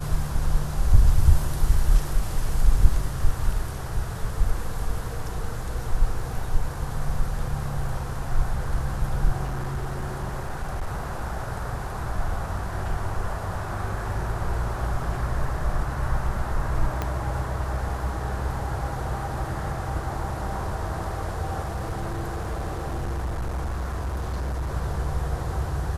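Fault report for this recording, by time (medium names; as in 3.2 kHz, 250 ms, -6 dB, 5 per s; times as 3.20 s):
9.44–11.28 s: clipped -23.5 dBFS
17.02 s: pop -13 dBFS
21.64–24.74 s: clipped -24.5 dBFS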